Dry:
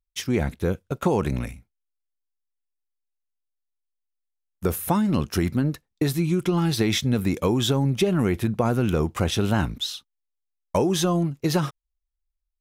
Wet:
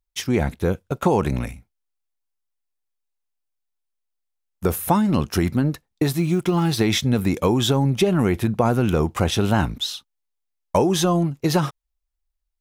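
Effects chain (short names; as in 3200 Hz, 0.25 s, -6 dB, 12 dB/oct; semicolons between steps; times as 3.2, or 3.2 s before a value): 6.04–6.82 G.711 law mismatch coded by A; bell 820 Hz +3.5 dB 0.77 oct; gain +2.5 dB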